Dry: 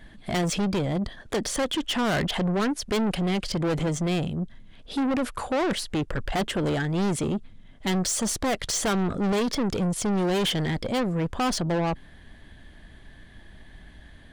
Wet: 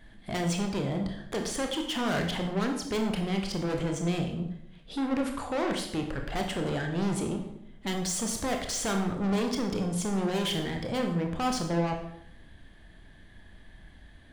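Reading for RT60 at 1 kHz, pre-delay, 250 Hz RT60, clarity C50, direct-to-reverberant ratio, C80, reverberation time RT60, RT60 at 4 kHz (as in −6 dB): 0.70 s, 22 ms, 0.90 s, 6.5 dB, 3.0 dB, 9.0 dB, 0.75 s, 0.60 s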